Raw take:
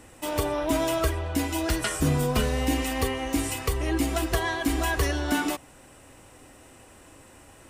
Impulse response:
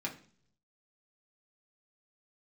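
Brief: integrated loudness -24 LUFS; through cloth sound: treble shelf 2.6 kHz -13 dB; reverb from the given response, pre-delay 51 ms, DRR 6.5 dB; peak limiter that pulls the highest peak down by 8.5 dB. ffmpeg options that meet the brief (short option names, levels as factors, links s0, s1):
-filter_complex "[0:a]alimiter=limit=0.0841:level=0:latency=1,asplit=2[s0][s1];[1:a]atrim=start_sample=2205,adelay=51[s2];[s1][s2]afir=irnorm=-1:irlink=0,volume=0.355[s3];[s0][s3]amix=inputs=2:normalize=0,highshelf=f=2600:g=-13,volume=2.11"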